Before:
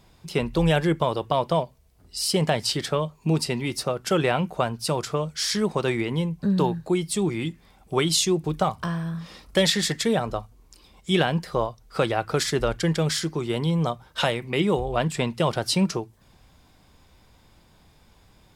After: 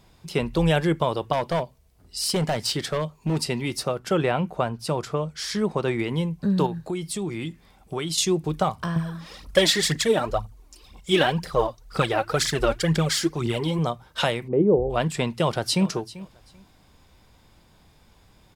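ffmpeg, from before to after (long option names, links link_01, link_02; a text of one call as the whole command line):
ffmpeg -i in.wav -filter_complex "[0:a]asettb=1/sr,asplit=3[link_01][link_02][link_03];[link_01]atrim=end=1.334[link_04];[link_02]atrim=start=1.33:end=3.41,asetpts=PTS-STARTPTS,afade=type=in:duration=0.004:curve=qsin,afade=type=out:start_time=2.076:duration=0.004:curve=qsin,asoftclip=type=hard:threshold=-19dB[link_05];[link_03]atrim=start=3.406[link_06];[link_04][link_05]acrossfade=duration=0.004:curve1=hsin:curve2=qsin[link_07];[link_07][link_06]acrossfade=duration=0.004:curve1=qsin:curve2=hsin,asettb=1/sr,asplit=3[link_08][link_09][link_10];[link_08]atrim=end=3.994[link_11];[link_09]atrim=start=3.99:end=5.99,asetpts=PTS-STARTPTS,afade=type=in:duration=0.004:curve=qsin,afade=type=out:start_time=1.996:duration=0.004:curve=qsin,highshelf=frequency=2700:gain=-7[link_12];[link_10]atrim=start=5.986[link_13];[link_11][link_12]acrossfade=duration=0.004:curve1=hsin:curve2=qsin[link_14];[link_14][link_13]acrossfade=duration=0.004:curve1=qsin:curve2=hsin,asettb=1/sr,asplit=3[link_15][link_16][link_17];[link_15]atrim=end=6.664[link_18];[link_16]atrim=start=6.66:end=8.18,asetpts=PTS-STARTPTS,afade=type=in:duration=0.004:curve=qsin,afade=type=out:start_time=1.516:duration=0.004:curve=qsin,acompressor=threshold=-27dB:ratio=2.5:attack=3.2:release=140:knee=1:detection=peak[link_19];[link_17]atrim=start=8.176[link_20];[link_18][link_19]acrossfade=duration=0.004:curve1=hsin:curve2=qsin[link_21];[link_21][link_20]acrossfade=duration=0.004:curve1=qsin:curve2=hsin,asettb=1/sr,asplit=3[link_22][link_23][link_24];[link_22]atrim=end=8.964[link_25];[link_23]atrim=start=8.96:end=13.79,asetpts=PTS-STARTPTS,afade=type=in:duration=0.004:curve=qsin,afade=type=out:start_time=4.826:duration=0.004:curve=qsin,aphaser=in_gain=1:out_gain=1:delay=3.8:decay=0.65:speed=2:type=triangular[link_26];[link_24]atrim=start=13.786[link_27];[link_25][link_26]acrossfade=duration=0.004:curve1=hsin:curve2=qsin[link_28];[link_28][link_27]acrossfade=duration=0.004:curve1=qsin:curve2=hsin,asplit=3[link_29][link_30][link_31];[link_29]afade=type=out:start_time=14.47:duration=0.02[link_32];[link_30]lowpass=frequency=480:width_type=q:width=2,afade=type=in:start_time=14.47:duration=0.02,afade=type=out:start_time=14.89:duration=0.02[link_33];[link_31]afade=type=in:start_time=14.89:duration=0.02[link_34];[link_32][link_33][link_34]amix=inputs=3:normalize=0,asplit=2[link_35][link_36];[link_36]afade=type=in:start_time=15.4:duration=0.01,afade=type=out:start_time=15.88:duration=0.01,aecho=0:1:390|780:0.133352|0.0266704[link_37];[link_35][link_37]amix=inputs=2:normalize=0" out.wav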